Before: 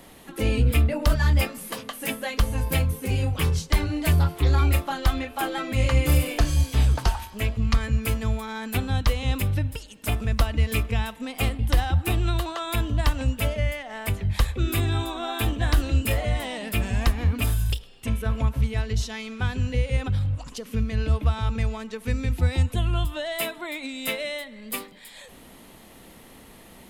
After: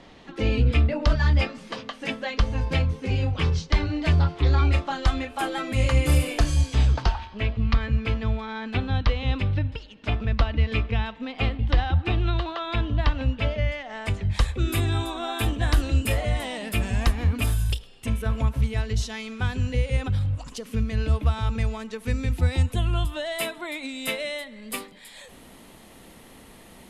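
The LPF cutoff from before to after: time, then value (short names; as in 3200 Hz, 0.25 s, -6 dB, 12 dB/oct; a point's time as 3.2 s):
LPF 24 dB/oct
4.66 s 5600 Hz
5.51 s 11000 Hz
6.47 s 11000 Hz
7.22 s 4300 Hz
13.38 s 4300 Hz
14.73 s 12000 Hz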